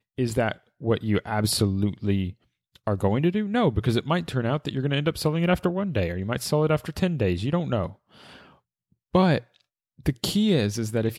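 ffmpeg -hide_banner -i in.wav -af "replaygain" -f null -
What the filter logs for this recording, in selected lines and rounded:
track_gain = +5.7 dB
track_peak = 0.272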